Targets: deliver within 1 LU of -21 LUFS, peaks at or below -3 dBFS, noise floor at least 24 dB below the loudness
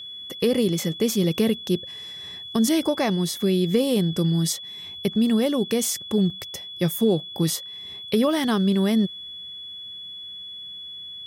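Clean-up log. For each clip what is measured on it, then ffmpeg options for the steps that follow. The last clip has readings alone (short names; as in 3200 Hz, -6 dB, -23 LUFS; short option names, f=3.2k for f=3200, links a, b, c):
steady tone 3400 Hz; tone level -35 dBFS; loudness -23.0 LUFS; peak -8.5 dBFS; loudness target -21.0 LUFS
-> -af "bandreject=f=3.4k:w=30"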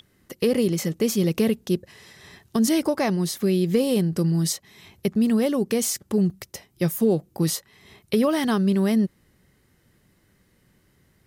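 steady tone none; loudness -23.0 LUFS; peak -8.5 dBFS; loudness target -21.0 LUFS
-> -af "volume=2dB"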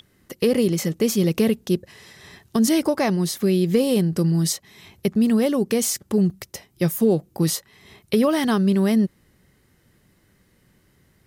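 loudness -21.0 LUFS; peak -6.5 dBFS; noise floor -61 dBFS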